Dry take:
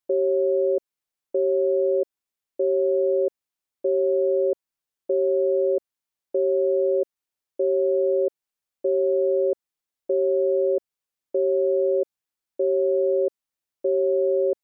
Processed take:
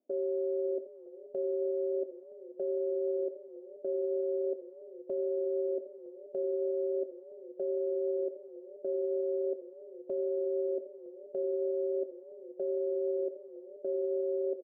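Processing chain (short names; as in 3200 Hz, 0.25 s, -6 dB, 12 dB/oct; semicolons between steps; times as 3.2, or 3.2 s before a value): switching spikes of -30 dBFS; recorder AGC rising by 24 dB/s; gate -24 dBFS, range -7 dB; Chebyshev band-pass 230–640 Hz, order 3; low-pass opened by the level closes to 380 Hz, open at -22.5 dBFS; limiter -32 dBFS, peak gain reduction 17.5 dB; doubler 24 ms -13 dB; echo 83 ms -14 dB; warbling echo 0.483 s, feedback 75%, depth 135 cents, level -19 dB; gain +5 dB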